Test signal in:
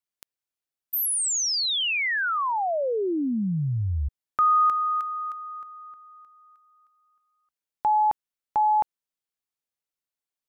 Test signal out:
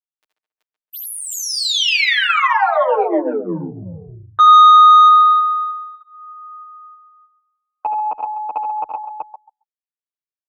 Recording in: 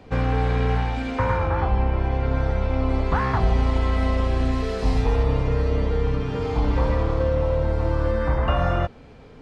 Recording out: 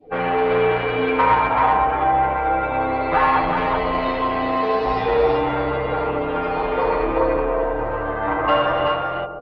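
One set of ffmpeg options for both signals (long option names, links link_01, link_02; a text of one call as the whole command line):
ffmpeg -i in.wav -filter_complex "[0:a]asplit=2[link_01][link_02];[link_02]adelay=137,lowpass=frequency=3400:poles=1,volume=-9.5dB,asplit=2[link_03][link_04];[link_04]adelay=137,lowpass=frequency=3400:poles=1,volume=0.25,asplit=2[link_05][link_06];[link_06]adelay=137,lowpass=frequency=3400:poles=1,volume=0.25[link_07];[link_03][link_05][link_07]amix=inputs=3:normalize=0[link_08];[link_01][link_08]amix=inputs=2:normalize=0,adynamicequalizer=threshold=0.01:dfrequency=1600:dqfactor=2.2:tfrequency=1600:tqfactor=2.2:attack=5:release=100:ratio=0.375:range=3:mode=cutabove:tftype=bell,afftdn=noise_reduction=24:noise_floor=-41,aecho=1:1:6.5:0.77,asoftclip=type=tanh:threshold=-17dB,acrossover=split=350 4200:gain=0.1 1 0.2[link_09][link_10][link_11];[link_09][link_10][link_11]amix=inputs=3:normalize=0,asplit=2[link_12][link_13];[link_13]aecho=0:1:68|79|379:0.224|0.473|0.668[link_14];[link_12][link_14]amix=inputs=2:normalize=0,alimiter=level_in=12.5dB:limit=-1dB:release=50:level=0:latency=1,asplit=2[link_15][link_16];[link_16]adelay=9.5,afreqshift=0.31[link_17];[link_15][link_17]amix=inputs=2:normalize=1,volume=-1dB" out.wav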